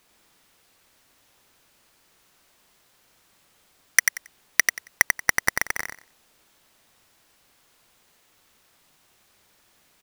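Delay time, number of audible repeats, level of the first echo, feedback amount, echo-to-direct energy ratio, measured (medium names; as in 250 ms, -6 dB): 91 ms, 3, -4.5 dB, 19%, -4.5 dB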